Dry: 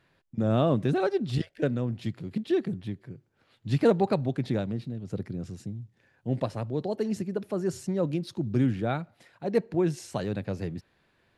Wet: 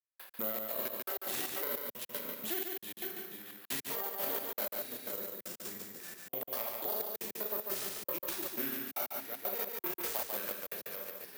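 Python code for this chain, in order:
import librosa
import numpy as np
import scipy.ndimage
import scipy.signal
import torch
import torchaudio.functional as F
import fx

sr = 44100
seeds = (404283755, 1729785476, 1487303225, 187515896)

y = fx.tracing_dist(x, sr, depth_ms=0.36)
y = scipy.signal.sosfilt(scipy.signal.butter(2, 740.0, 'highpass', fs=sr, output='sos'), y)
y = fx.high_shelf(y, sr, hz=6000.0, db=5.0)
y = y + 10.0 ** (-10.5 / 20.0) * np.pad(y, (int(455 * sr / 1000.0), 0))[:len(y)]
y = fx.rev_schroeder(y, sr, rt60_s=0.54, comb_ms=29, drr_db=-1.5)
y = fx.over_compress(y, sr, threshold_db=-33.0, ratio=-1.0)
y = (np.kron(y[::3], np.eye(3)[0]) * 3)[:len(y)]
y = fx.step_gate(y, sr, bpm=154, pattern='..x.xx.xx', floor_db=-60.0, edge_ms=4.5)
y = y + 10.0 ** (-5.0 / 20.0) * np.pad(y, (int(143 * sr / 1000.0), 0))[:len(y)]
y = fx.band_squash(y, sr, depth_pct=70)
y = y * librosa.db_to_amplitude(-6.5)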